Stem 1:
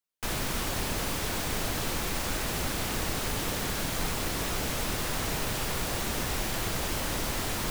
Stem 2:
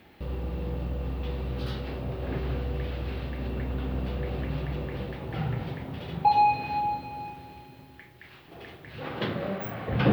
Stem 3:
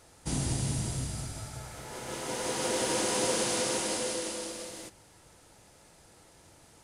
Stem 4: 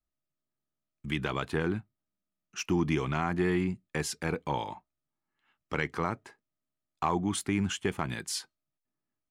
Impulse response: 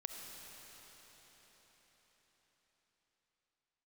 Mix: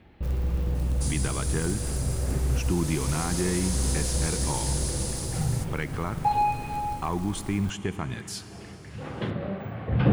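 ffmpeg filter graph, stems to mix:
-filter_complex "[0:a]equalizer=f=8.9k:w=0.4:g=-7.5,aeval=exprs='(mod(12.6*val(0)+1,2)-1)/12.6':c=same,volume=-15.5dB[a];[1:a]aemphasis=mode=reproduction:type=50kf,volume=-3dB[b];[2:a]acompressor=threshold=-31dB:ratio=6,aexciter=amount=2.2:drive=8.4:freq=3.8k,adelay=750,volume=-6dB[c];[3:a]volume=-5.5dB,asplit=3[d][e][f];[e]volume=-3.5dB[g];[f]apad=whole_len=446476[h];[b][h]sidechaincompress=threshold=-40dB:ratio=8:attack=16:release=115[i];[4:a]atrim=start_sample=2205[j];[g][j]afir=irnorm=-1:irlink=0[k];[a][i][c][d][k]amix=inputs=5:normalize=0,lowshelf=f=140:g=12"

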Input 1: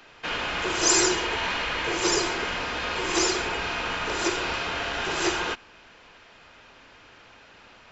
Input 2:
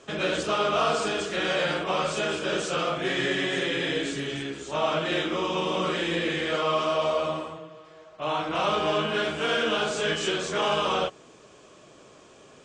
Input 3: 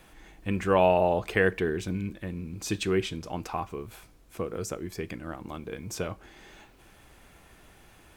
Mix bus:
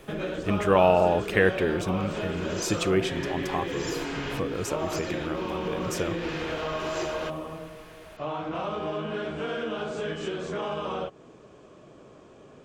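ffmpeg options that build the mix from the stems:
-filter_complex "[0:a]adelay=1750,volume=-2.5dB[a];[1:a]highshelf=f=2.7k:g=-11,volume=-1dB[b];[2:a]volume=2dB,asplit=2[c][d];[d]apad=whole_len=426217[e];[a][e]sidechaincompress=threshold=-37dB:ratio=8:attack=6.2:release=237[f];[f][b]amix=inputs=2:normalize=0,lowshelf=f=490:g=6,acompressor=threshold=-30dB:ratio=3,volume=0dB[g];[c][g]amix=inputs=2:normalize=0"

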